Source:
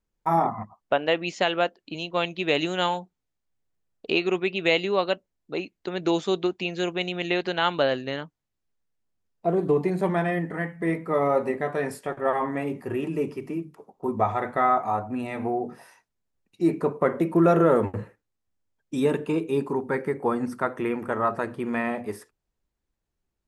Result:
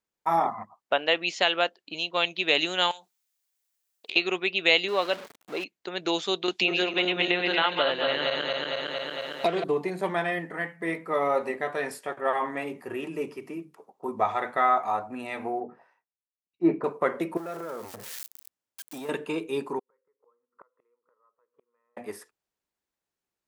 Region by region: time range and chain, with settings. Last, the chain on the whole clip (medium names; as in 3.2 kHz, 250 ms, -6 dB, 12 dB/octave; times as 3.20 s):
2.91–4.16 s: compression 20:1, threshold -37 dBFS + tilt EQ +4.5 dB/octave + loudspeaker Doppler distortion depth 0.1 ms
4.88–5.64 s: jump at every zero crossing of -31 dBFS + high-pass 170 Hz 6 dB/octave + treble shelf 3.3 kHz -10.5 dB
6.48–9.64 s: backward echo that repeats 114 ms, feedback 66%, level -4.5 dB + low-pass that closes with the level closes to 2.9 kHz, closed at -20 dBFS + three bands compressed up and down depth 100%
15.60–16.84 s: low-pass 1.3 kHz + three bands expanded up and down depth 70%
17.37–19.09 s: zero-crossing glitches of -26 dBFS + compression, threshold -28 dBFS + transformer saturation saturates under 530 Hz
19.79–21.97 s: two resonant band-passes 710 Hz, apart 1.1 oct + inverted gate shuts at -35 dBFS, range -35 dB + comb 1.5 ms, depth 32%
whole clip: high-pass 560 Hz 6 dB/octave; dynamic bell 3.7 kHz, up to +6 dB, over -45 dBFS, Q 1